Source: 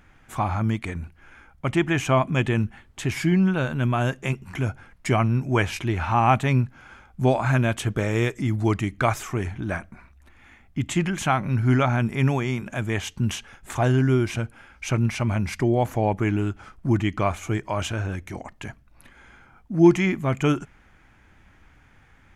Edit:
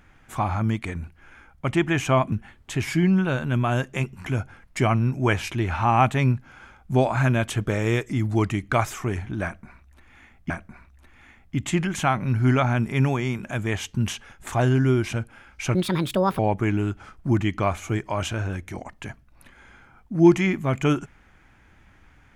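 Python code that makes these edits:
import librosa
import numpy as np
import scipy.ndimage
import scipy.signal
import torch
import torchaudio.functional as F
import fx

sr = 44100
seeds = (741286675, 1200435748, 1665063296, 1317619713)

y = fx.edit(x, sr, fx.cut(start_s=2.32, length_s=0.29),
    fx.repeat(start_s=9.73, length_s=1.06, count=2),
    fx.speed_span(start_s=14.98, length_s=1.0, speed=1.57), tone=tone)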